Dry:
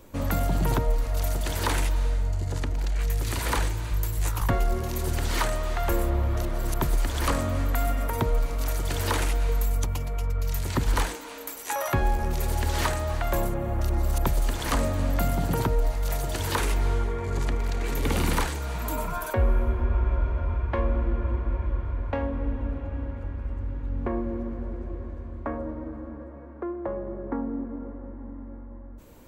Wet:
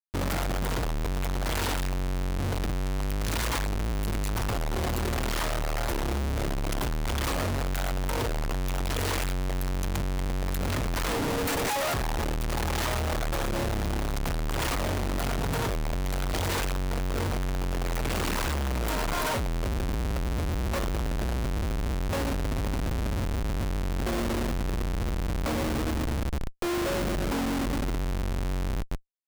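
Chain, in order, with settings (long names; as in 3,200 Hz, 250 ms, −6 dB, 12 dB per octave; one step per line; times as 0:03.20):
comparator with hysteresis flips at −36.5 dBFS
level −2 dB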